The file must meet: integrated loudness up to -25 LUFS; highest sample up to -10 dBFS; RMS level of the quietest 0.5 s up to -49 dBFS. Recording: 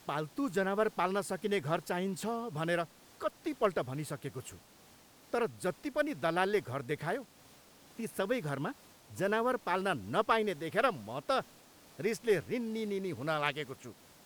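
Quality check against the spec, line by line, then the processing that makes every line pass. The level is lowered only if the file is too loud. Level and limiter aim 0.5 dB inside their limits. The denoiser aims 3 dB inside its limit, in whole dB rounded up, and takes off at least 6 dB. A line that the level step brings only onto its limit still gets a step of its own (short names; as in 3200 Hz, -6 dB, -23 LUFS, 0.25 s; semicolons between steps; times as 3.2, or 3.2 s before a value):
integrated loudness -34.5 LUFS: OK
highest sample -15.5 dBFS: OK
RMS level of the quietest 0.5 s -60 dBFS: OK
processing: none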